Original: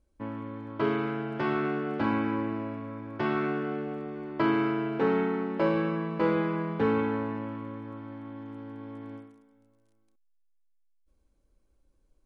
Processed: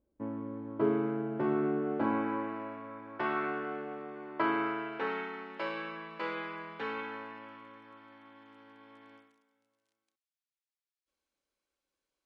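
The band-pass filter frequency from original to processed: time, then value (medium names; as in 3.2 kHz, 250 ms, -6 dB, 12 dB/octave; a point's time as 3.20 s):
band-pass filter, Q 0.64
1.75 s 340 Hz
2.56 s 1.2 kHz
4.63 s 1.2 kHz
5.28 s 3.2 kHz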